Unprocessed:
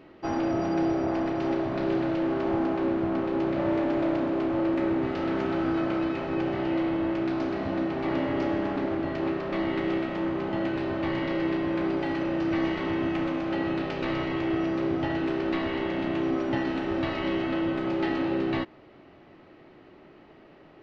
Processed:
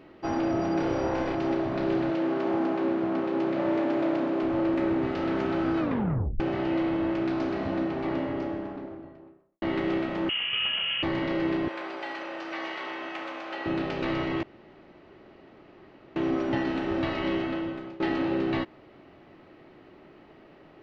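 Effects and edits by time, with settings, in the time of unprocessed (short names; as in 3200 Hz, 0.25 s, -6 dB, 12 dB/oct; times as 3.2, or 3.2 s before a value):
0.76–1.35 flutter echo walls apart 4.9 m, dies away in 0.61 s
2.1–4.43 HPF 170 Hz
5.8 tape stop 0.60 s
7.58–9.62 studio fade out
10.29–11.03 inverted band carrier 3200 Hz
11.68–13.66 HPF 700 Hz
14.43–16.16 room tone
17.34–18 fade out, to -19.5 dB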